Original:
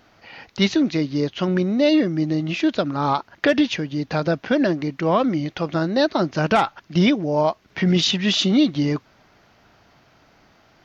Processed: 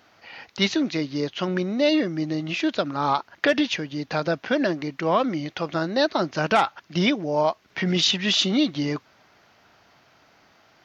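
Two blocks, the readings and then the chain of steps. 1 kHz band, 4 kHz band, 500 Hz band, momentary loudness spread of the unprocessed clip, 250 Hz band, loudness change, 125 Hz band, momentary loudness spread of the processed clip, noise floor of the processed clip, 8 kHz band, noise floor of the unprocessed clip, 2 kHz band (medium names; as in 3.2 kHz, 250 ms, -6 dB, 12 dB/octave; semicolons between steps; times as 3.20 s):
-1.0 dB, 0.0 dB, -2.5 dB, 6 LU, -5.0 dB, -3.0 dB, -6.5 dB, 8 LU, -59 dBFS, no reading, -57 dBFS, -0.5 dB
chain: high-pass 54 Hz; bass shelf 390 Hz -7.5 dB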